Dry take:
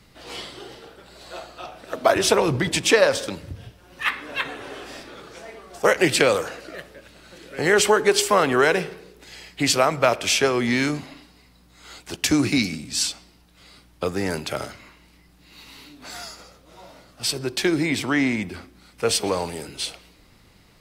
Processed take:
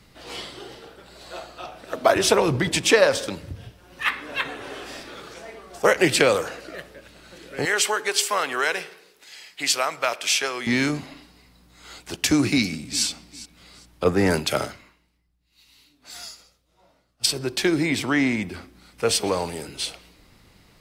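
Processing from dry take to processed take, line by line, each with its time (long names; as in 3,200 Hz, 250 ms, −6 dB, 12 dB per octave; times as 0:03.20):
0:04.06–0:05.34: one half of a high-frequency compander encoder only
0:07.65–0:10.67: high-pass filter 1,400 Hz 6 dB per octave
0:12.52–0:13.05: delay throw 400 ms, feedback 25%, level −17.5 dB
0:14.04–0:17.26: multiband upward and downward expander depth 100%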